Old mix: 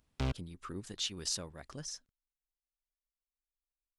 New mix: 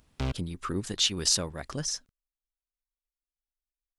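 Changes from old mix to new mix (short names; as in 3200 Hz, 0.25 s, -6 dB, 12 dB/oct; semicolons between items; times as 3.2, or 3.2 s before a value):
speech +11.0 dB; background +3.0 dB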